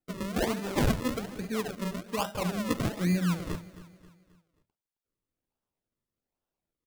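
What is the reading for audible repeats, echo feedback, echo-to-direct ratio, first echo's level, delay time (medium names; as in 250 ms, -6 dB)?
3, 44%, -15.5 dB, -16.5 dB, 267 ms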